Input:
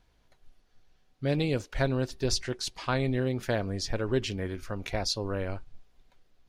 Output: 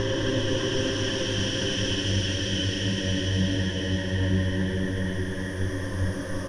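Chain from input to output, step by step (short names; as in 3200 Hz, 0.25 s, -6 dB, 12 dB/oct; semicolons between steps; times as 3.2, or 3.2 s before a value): ripple EQ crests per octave 1.2, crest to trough 15 dB; in parallel at +2 dB: compressor, threshold -37 dBFS, peak gain reduction 16 dB; on the sum: Paulstretch 13×, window 0.50 s, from 4.13; on a send: frequency-shifting echo 0.268 s, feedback 62%, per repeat +90 Hz, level -23 dB; on the sum: harmoniser -12 st -15 dB, -3 st -15 dB; delay with a stepping band-pass 0.597 s, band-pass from 1300 Hz, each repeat 1.4 oct, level -3.5 dB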